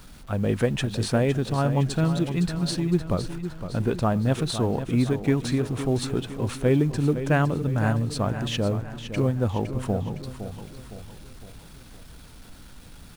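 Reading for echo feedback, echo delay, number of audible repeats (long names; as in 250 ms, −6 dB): 48%, 511 ms, 4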